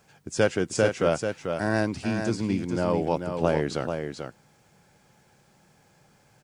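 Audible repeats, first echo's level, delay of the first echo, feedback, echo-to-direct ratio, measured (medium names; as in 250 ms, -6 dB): 1, -6.5 dB, 439 ms, no regular repeats, -6.5 dB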